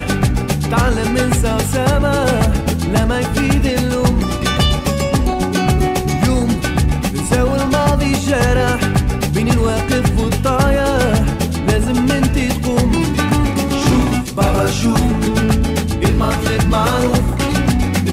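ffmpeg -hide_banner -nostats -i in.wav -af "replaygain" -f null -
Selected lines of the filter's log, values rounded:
track_gain = -1.5 dB
track_peak = 0.445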